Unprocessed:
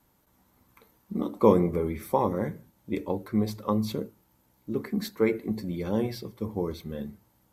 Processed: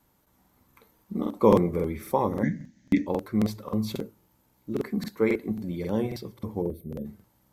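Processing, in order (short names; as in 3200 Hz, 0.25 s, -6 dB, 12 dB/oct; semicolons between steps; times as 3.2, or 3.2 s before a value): 2.43–3.07 EQ curve 100 Hz 0 dB, 270 Hz +14 dB, 410 Hz -11 dB, 610 Hz -3 dB, 1200 Hz -17 dB, 1800 Hz +13 dB, 2600 Hz +1 dB, 4200 Hz +3 dB, 6500 Hz +9 dB, 9400 Hz -24 dB; 6.62–7.05 spectral gain 700–8500 Hz -22 dB; crackling interface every 0.27 s, samples 2048, repeat, from 0.4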